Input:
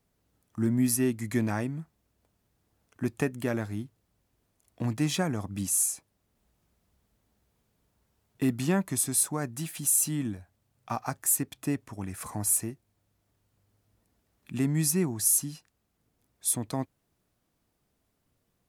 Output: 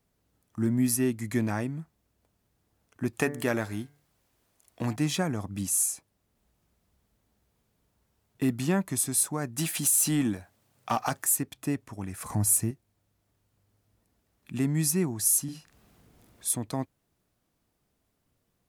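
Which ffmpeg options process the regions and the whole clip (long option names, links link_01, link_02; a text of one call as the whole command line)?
ffmpeg -i in.wav -filter_complex "[0:a]asettb=1/sr,asplit=3[link_01][link_02][link_03];[link_01]atrim=end=3.134[link_04];[link_02]atrim=start=3.13:end=4.96,asetpts=PTS-STARTPTS,afade=type=in:duration=0.004:curve=qsin,afade=type=out:start_time=1.826:duration=0.004:curve=qsin,lowshelf=frequency=350:gain=-8.5,bandreject=frequency=145.3:width_type=h:width=4,bandreject=frequency=290.6:width_type=h:width=4,bandreject=frequency=435.9:width_type=h:width=4,bandreject=frequency=581.2:width_type=h:width=4,bandreject=frequency=726.5:width_type=h:width=4,bandreject=frequency=871.8:width_type=h:width=4,bandreject=frequency=1017.1:width_type=h:width=4,bandreject=frequency=1162.4:width_type=h:width=4,bandreject=frequency=1307.7:width_type=h:width=4,bandreject=frequency=1453:width_type=h:width=4,bandreject=frequency=1598.3:width_type=h:width=4,bandreject=frequency=1743.6:width_type=h:width=4,bandreject=frequency=1888.9:width_type=h:width=4,bandreject=frequency=2034.2:width_type=h:width=4,bandreject=frequency=2179.5:width_type=h:width=4,bandreject=frequency=2324.8:width_type=h:width=4,acontrast=53[link_05];[link_03]atrim=start=4.956[link_06];[link_04][link_05]acrossfade=duration=0.004:curve1=hsin:curve2=qsin[link_07];[link_07][link_06]acrossfade=duration=0.004:curve1=qsin:curve2=hsin,asettb=1/sr,asplit=3[link_08][link_09][link_10];[link_08]atrim=end=9.584[link_11];[link_09]atrim=start=9.58:end=11.25,asetpts=PTS-STARTPTS,afade=type=in:duration=0.004:curve=qsin,afade=type=out:start_time=1.666:duration=0.004:curve=qsin,highpass=frequency=240:poles=1,acompressor=threshold=-26dB:ratio=6:attack=3.2:release=140:knee=1:detection=peak,aeval=exprs='0.126*sin(PI/2*1.78*val(0)/0.126)':channel_layout=same[link_12];[link_10]atrim=start=11.246[link_13];[link_11][link_12]acrossfade=duration=0.004:curve1=hsin:curve2=qsin[link_14];[link_14][link_13]acrossfade=duration=0.004:curve1=qsin:curve2=hsin,asettb=1/sr,asplit=3[link_15][link_16][link_17];[link_15]atrim=end=12.304[link_18];[link_16]atrim=start=12.3:end=12.71,asetpts=PTS-STARTPTS,afade=type=in:duration=0.004:curve=qsin,afade=type=out:start_time=0.406:duration=0.004:curve=qsin,bass=frequency=250:gain=9,treble=frequency=4000:gain=2,acompressor=mode=upward:threshold=-31dB:ratio=2.5:attack=3.2:release=140:knee=2.83:detection=peak[link_19];[link_17]atrim=start=12.706[link_20];[link_18][link_19]acrossfade=duration=0.004:curve1=hsin:curve2=qsin[link_21];[link_21][link_20]acrossfade=duration=0.004:curve1=qsin:curve2=hsin,asettb=1/sr,asplit=3[link_22][link_23][link_24];[link_22]atrim=end=15.444[link_25];[link_23]atrim=start=15.44:end=16.5,asetpts=PTS-STARTPTS,afade=type=in:duration=0.004:curve=qsin,afade=type=out:start_time=1.056:duration=0.004:curve=qsin,bass=frequency=250:gain=1,treble=frequency=4000:gain=-3,acompressor=mode=upward:threshold=-46dB:ratio=2.5:attack=3.2:release=140:knee=2.83:detection=peak,asplit=2[link_26][link_27];[link_27]adelay=44,volume=-5dB[link_28];[link_26][link_28]amix=inputs=2:normalize=0,atrim=end_sample=46746[link_29];[link_24]atrim=start=16.496[link_30];[link_25][link_29]acrossfade=duration=0.004:curve1=hsin:curve2=qsin[link_31];[link_31][link_30]acrossfade=duration=0.004:curve1=qsin:curve2=hsin" out.wav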